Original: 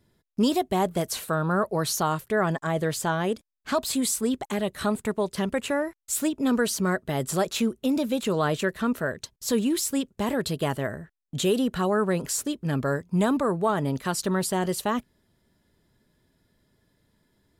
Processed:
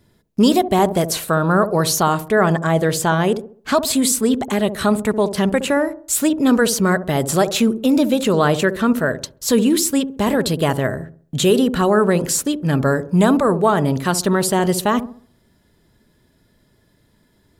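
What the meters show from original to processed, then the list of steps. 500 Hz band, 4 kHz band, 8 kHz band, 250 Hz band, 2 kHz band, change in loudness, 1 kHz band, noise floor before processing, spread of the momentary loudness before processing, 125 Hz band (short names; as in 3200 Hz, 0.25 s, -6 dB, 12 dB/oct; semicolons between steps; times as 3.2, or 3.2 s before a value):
+9.0 dB, +8.5 dB, +8.5 dB, +9.0 dB, +8.5 dB, +9.0 dB, +8.5 dB, -72 dBFS, 5 LU, +9.0 dB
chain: dark delay 67 ms, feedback 37%, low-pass 640 Hz, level -9 dB; gain +8.5 dB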